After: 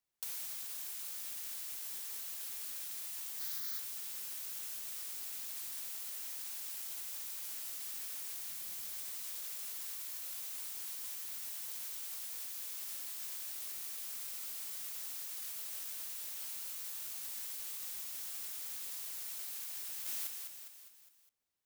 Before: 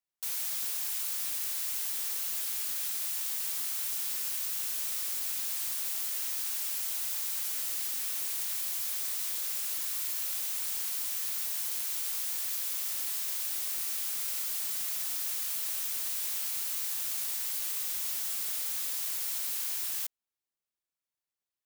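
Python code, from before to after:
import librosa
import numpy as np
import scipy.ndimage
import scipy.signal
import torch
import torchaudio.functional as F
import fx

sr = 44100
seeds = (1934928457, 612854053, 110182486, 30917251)

y = fx.fixed_phaser(x, sr, hz=2700.0, stages=6, at=(3.39, 3.79))
y = fx.bass_treble(y, sr, bass_db=10, treble_db=0, at=(8.48, 8.91))
y = fx.echo_feedback(y, sr, ms=204, feedback_pct=53, wet_db=-8.5)
y = fx.over_compress(y, sr, threshold_db=-37.0, ratio=-0.5)
y = fx.low_shelf(y, sr, hz=380.0, db=4.0)
y = y * 10.0 ** (-4.0 / 20.0)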